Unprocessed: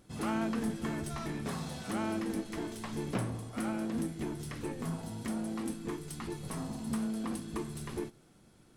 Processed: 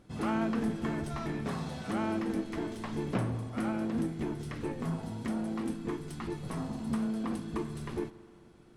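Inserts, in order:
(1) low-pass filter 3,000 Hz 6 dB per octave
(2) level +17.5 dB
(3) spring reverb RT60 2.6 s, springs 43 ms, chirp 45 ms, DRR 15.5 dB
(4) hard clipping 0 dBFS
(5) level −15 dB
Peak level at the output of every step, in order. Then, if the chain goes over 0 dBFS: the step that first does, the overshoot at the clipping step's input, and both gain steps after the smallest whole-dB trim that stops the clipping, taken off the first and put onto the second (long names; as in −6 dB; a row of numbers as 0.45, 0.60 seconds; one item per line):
−20.0, −2.5, −2.5, −2.5, −17.5 dBFS
no step passes full scale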